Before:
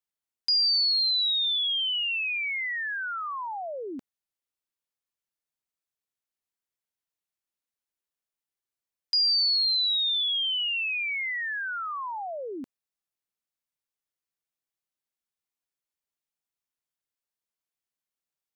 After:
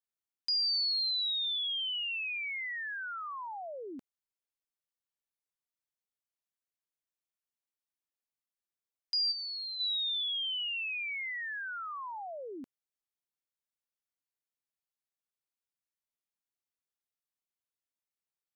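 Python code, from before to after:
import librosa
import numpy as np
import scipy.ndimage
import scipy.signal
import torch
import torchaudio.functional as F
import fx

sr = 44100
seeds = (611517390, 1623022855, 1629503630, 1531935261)

y = fx.lowpass(x, sr, hz=1800.0, slope=6, at=(9.31, 9.79), fade=0.02)
y = y * 10.0 ** (-7.0 / 20.0)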